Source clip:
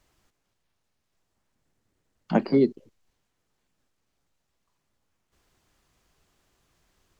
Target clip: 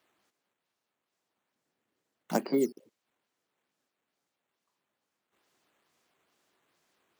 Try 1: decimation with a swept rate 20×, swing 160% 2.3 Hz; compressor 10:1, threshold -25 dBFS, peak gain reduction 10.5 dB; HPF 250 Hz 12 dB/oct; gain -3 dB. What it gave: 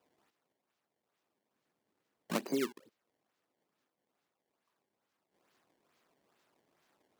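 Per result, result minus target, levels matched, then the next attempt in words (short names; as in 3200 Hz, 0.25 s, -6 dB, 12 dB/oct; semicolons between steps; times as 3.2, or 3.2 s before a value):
decimation with a swept rate: distortion +12 dB; compressor: peak gain reduction +7 dB
decimation with a swept rate 5×, swing 160% 2.3 Hz; compressor 10:1, threshold -25 dBFS, peak gain reduction 10.5 dB; HPF 250 Hz 12 dB/oct; gain -3 dB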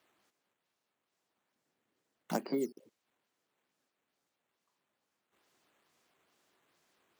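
compressor: peak gain reduction +7 dB
decimation with a swept rate 5×, swing 160% 2.3 Hz; compressor 10:1, threshold -17 dBFS, peak gain reduction 3.5 dB; HPF 250 Hz 12 dB/oct; gain -3 dB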